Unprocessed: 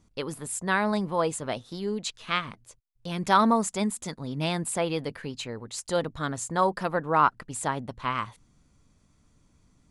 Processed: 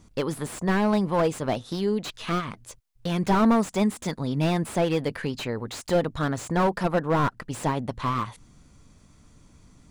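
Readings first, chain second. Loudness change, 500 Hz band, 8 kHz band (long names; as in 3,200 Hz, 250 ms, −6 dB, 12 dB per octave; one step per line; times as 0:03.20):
+2.0 dB, +3.5 dB, −5.0 dB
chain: in parallel at +2 dB: downward compressor, threshold −36 dBFS, peak gain reduction 19.5 dB
on the sum: slew-rate limiting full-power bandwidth 69 Hz
level +2 dB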